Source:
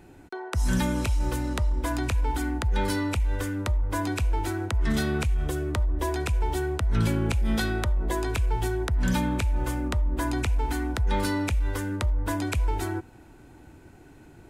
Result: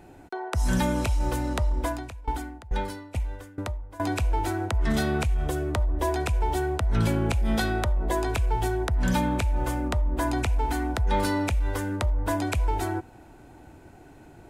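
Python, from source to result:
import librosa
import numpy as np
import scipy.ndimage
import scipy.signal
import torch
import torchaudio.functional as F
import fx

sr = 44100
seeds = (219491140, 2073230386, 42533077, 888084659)

y = fx.peak_eq(x, sr, hz=700.0, db=6.5, octaves=0.83)
y = fx.tremolo_decay(y, sr, direction='decaying', hz=2.3, depth_db=22, at=(1.84, 4.0))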